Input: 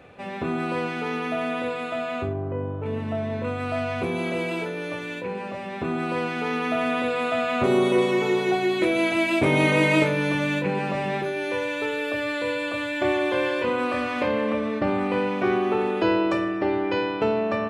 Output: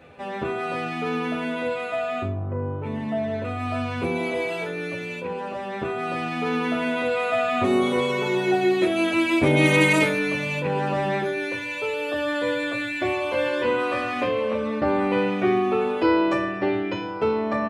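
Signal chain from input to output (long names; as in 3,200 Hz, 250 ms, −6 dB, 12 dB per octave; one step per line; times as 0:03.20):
0:09.64–0:10.17: high-shelf EQ 4,300 Hz → 7,100 Hz +10 dB
barber-pole flanger 9.5 ms −0.75 Hz
level +3.5 dB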